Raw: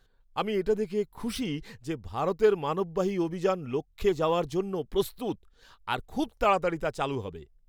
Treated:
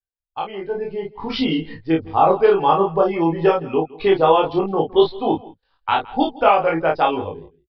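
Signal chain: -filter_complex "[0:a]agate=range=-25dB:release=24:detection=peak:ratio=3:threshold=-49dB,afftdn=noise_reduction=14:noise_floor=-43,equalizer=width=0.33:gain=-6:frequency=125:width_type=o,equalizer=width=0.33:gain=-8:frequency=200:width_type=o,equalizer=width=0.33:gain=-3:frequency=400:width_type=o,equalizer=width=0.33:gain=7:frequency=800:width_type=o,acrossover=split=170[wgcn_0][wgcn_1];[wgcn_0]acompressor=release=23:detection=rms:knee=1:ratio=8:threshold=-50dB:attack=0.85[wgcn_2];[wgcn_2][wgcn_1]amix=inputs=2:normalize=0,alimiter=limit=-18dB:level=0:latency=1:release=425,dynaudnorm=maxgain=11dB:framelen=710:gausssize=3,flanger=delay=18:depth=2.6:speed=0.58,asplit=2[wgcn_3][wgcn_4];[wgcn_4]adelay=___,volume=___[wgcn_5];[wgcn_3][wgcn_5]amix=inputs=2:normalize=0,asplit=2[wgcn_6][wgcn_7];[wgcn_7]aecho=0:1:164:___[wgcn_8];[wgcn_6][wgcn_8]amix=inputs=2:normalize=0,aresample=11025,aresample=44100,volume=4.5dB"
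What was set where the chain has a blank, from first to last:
31, -2.5dB, 0.0944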